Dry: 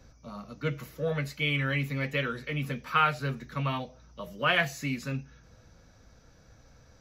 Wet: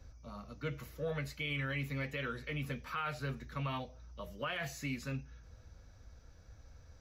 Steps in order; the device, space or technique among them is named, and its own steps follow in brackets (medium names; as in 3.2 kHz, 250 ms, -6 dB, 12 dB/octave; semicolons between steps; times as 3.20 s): car stereo with a boomy subwoofer (resonant low shelf 110 Hz +7.5 dB, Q 1.5; peak limiter -23 dBFS, peak gain reduction 11.5 dB); trim -5.5 dB